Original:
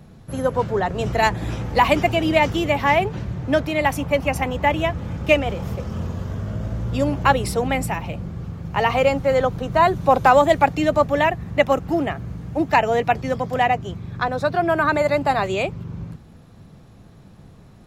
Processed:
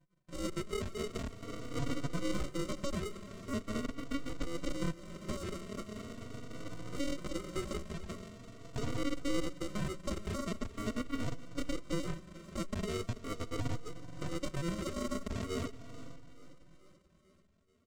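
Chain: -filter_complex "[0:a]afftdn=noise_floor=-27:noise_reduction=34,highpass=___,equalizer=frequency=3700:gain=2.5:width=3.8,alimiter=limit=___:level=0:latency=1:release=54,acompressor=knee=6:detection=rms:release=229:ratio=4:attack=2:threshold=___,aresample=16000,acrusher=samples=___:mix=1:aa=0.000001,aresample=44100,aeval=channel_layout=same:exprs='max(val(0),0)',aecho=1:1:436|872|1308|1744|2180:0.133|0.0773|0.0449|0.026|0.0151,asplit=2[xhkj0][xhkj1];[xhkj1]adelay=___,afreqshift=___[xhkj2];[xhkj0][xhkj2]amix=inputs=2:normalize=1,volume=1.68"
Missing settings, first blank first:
370, 0.2, 0.0282, 19, 3.5, 0.42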